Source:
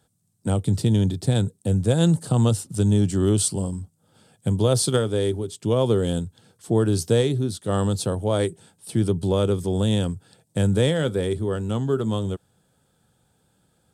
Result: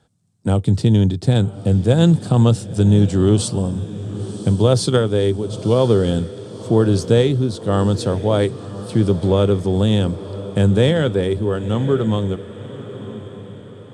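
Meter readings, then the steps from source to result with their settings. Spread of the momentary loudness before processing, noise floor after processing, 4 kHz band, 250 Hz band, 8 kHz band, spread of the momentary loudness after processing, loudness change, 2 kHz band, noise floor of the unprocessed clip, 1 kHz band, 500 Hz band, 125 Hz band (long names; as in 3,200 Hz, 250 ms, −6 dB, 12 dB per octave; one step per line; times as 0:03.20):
9 LU, −38 dBFS, +4.0 dB, +5.5 dB, −2.5 dB, 14 LU, +5.0 dB, +5.0 dB, −67 dBFS, +5.5 dB, +5.5 dB, +5.5 dB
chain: high-frequency loss of the air 76 metres
on a send: feedback delay with all-pass diffusion 1,028 ms, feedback 48%, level −14 dB
on the sum: level +5.5 dB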